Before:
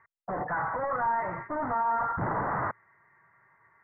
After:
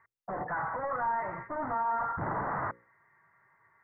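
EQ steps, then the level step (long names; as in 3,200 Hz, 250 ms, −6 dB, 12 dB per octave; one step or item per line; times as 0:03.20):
mains-hum notches 60/120/180/240/300/360/420/480/540 Hz
−3.0 dB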